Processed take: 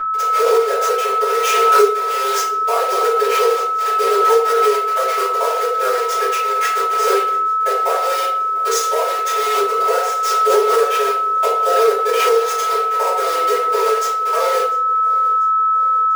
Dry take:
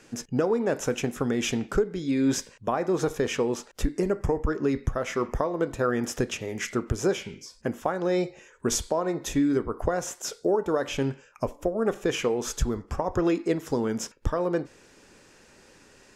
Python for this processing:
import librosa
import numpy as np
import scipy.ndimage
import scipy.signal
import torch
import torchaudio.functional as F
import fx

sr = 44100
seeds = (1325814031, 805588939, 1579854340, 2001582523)

y = fx.delta_hold(x, sr, step_db=-25.5)
y = scipy.signal.sosfilt(scipy.signal.butter(16, 390.0, 'highpass', fs=sr, output='sos'), y)
y = y + 0.97 * np.pad(y, (int(4.2 * sr / 1000.0), 0))[:len(y)]
y = y + 10.0 ** (-30.0 / 20.0) * np.sin(2.0 * np.pi * 1300.0 * np.arange(len(y)) / sr)
y = fx.rider(y, sr, range_db=10, speed_s=0.5)
y = fx.echo_feedback(y, sr, ms=694, feedback_pct=54, wet_db=-20.5)
y = fx.room_shoebox(y, sr, seeds[0], volume_m3=77.0, walls='mixed', distance_m=2.6)
y = fx.pre_swell(y, sr, db_per_s=20.0)
y = y * librosa.db_to_amplitude(-4.5)